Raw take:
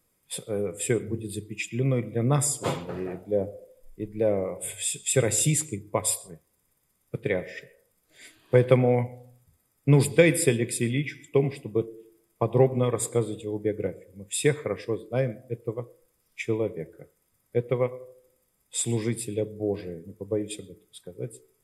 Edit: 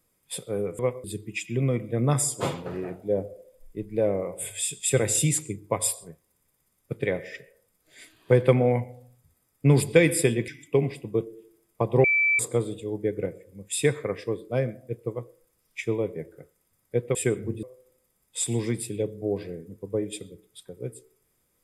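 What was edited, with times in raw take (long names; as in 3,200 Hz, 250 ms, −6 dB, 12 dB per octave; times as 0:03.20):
0:00.79–0:01.27: swap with 0:17.76–0:18.01
0:10.71–0:11.09: remove
0:12.65–0:13.00: beep over 2,320 Hz −18.5 dBFS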